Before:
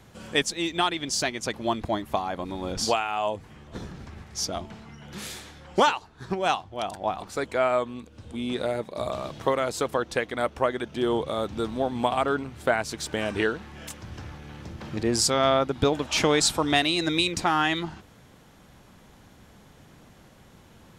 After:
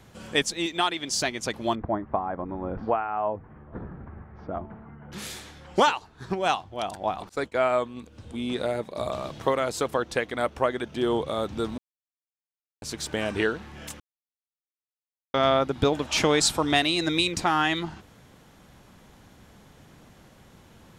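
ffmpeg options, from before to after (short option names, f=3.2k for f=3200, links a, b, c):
-filter_complex "[0:a]asettb=1/sr,asplit=3[a][b][c];[a]atrim=end=0.664[d];[b]atrim=start=0.66:end=1.11,asetpts=PTS-STARTPTS,afade=t=in:d=0.004:c=qsin,afade=t=out:st=0.446:d=0.004:c=qsin,lowshelf=f=140:g=-12[e];[c]atrim=start=1.106[f];[d][e]acrossfade=d=0.004:c1=hsin:c2=qsin[g];[g][f]acrossfade=d=0.004:c1=qsin:c2=hsin,asettb=1/sr,asplit=3[h][i][j];[h]atrim=end=1.754[k];[i]atrim=start=1.75:end=5.12,asetpts=PTS-STARTPTS,afade=t=in:d=0.004:c=qsin,afade=t=out:st=3.366:d=0.004:c=qsin,lowpass=f=1.6k:w=0.5412,lowpass=f=1.6k:w=1.3066[l];[j]atrim=start=5.116[m];[k][l]acrossfade=d=0.004:c1=hsin:c2=qsin[n];[n][m]acrossfade=d=0.004:c1=qsin:c2=hsin,asettb=1/sr,asplit=3[o][p][q];[o]atrim=end=7.294[r];[p]atrim=start=7.29:end=7.97,asetpts=PTS-STARTPTS,afade=t=in:d=0.004:c=qsin,afade=t=out:st=0.676:d=0.004:c=qsin,agate=range=-33dB:threshold=-34dB:ratio=3:release=100:detection=peak[s];[q]atrim=start=7.966[t];[r][s]acrossfade=d=0.004:c1=hsin:c2=qsin[u];[u][t]acrossfade=d=0.004:c1=qsin:c2=hsin,asplit=5[v][w][x][y][z];[v]atrim=end=11.78,asetpts=PTS-STARTPTS,afade=t=out:st=11.776:d=0.004:c=hsin[aa];[w]atrim=start=11.78:end=12.82,asetpts=PTS-STARTPTS,volume=0[ab];[x]atrim=start=12.82:end=14,asetpts=PTS-STARTPTS,afade=t=in:d=0.004:c=hsin,afade=t=out:st=1.176:d=0.004:c=hsin[ac];[y]atrim=start=14:end=15.34,asetpts=PTS-STARTPTS,volume=0[ad];[z]atrim=start=15.34,asetpts=PTS-STARTPTS,afade=t=in:d=0.004:c=hsin[ae];[aa][ab][ac][ad][ae]concat=n=5:v=0:a=1"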